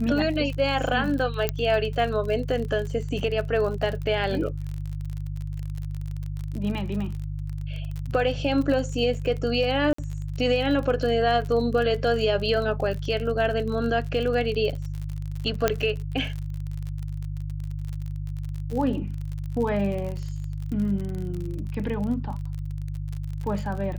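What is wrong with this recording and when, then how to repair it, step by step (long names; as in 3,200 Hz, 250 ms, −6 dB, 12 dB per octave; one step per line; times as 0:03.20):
surface crackle 42 per second −31 dBFS
mains hum 50 Hz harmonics 3 −31 dBFS
0:01.49: click −9 dBFS
0:09.93–0:09.98: drop-out 54 ms
0:15.68: click −6 dBFS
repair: click removal
hum removal 50 Hz, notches 3
repair the gap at 0:09.93, 54 ms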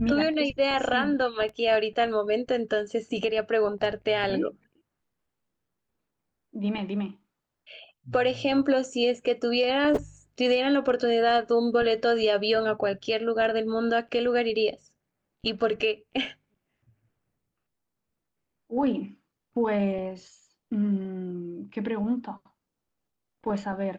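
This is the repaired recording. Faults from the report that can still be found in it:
0:01.49: click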